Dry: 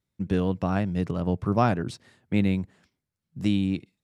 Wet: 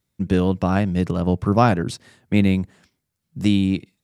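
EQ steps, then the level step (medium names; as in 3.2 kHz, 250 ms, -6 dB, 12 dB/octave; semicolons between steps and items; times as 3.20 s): treble shelf 5.6 kHz +5.5 dB; +6.0 dB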